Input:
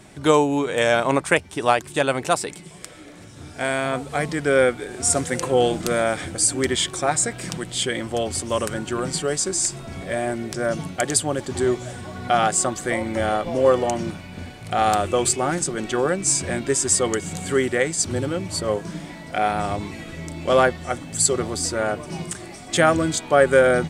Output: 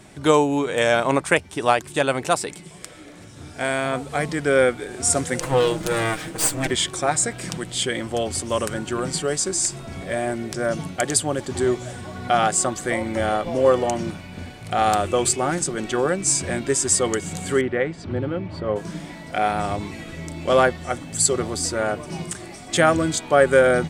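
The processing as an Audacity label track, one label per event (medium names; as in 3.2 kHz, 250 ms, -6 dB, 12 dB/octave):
5.400000	6.710000	comb filter that takes the minimum delay 6.3 ms
17.610000	18.760000	distance through air 380 m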